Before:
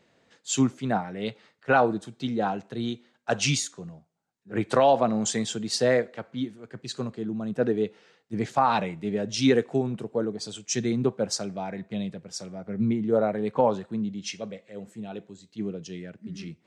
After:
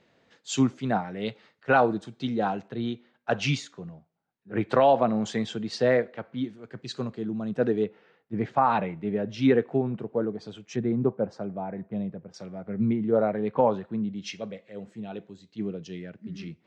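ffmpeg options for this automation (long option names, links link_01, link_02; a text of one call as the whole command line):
ffmpeg -i in.wav -af "asetnsamples=nb_out_samples=441:pad=0,asendcmd='2.68 lowpass f 3200;6.44 lowpass f 5200;7.84 lowpass f 2200;10.76 lowpass f 1200;12.34 lowpass f 2800;14.16 lowpass f 4400',lowpass=5500" out.wav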